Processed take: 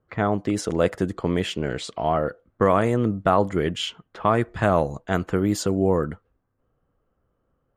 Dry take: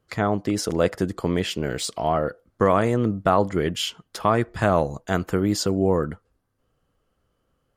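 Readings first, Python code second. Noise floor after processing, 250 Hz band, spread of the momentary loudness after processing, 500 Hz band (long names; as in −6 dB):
−73 dBFS, 0.0 dB, 8 LU, 0.0 dB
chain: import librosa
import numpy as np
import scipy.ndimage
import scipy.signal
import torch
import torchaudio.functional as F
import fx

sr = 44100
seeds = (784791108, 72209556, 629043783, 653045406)

y = fx.env_lowpass(x, sr, base_hz=1500.0, full_db=-18.0)
y = fx.peak_eq(y, sr, hz=5000.0, db=-6.5, octaves=0.46)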